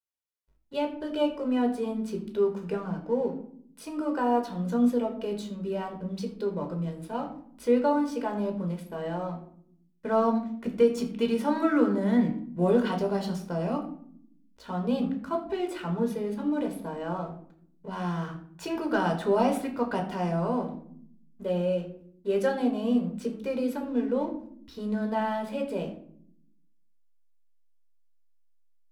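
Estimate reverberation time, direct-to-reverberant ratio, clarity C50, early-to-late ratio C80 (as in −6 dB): 0.65 s, 3.0 dB, 9.5 dB, 12.0 dB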